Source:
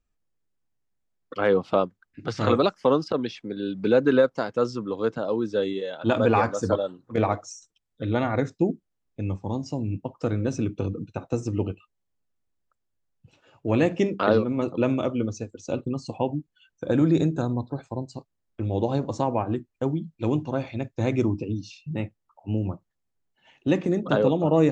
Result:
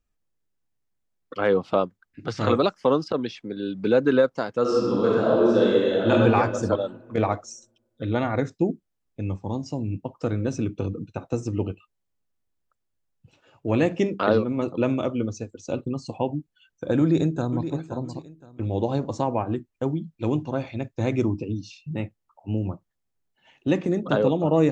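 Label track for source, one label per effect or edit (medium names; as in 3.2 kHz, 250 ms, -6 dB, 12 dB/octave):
4.610000	6.110000	reverb throw, RT60 1.8 s, DRR -6 dB
17.000000	17.630000	echo throw 520 ms, feedback 25%, level -10.5 dB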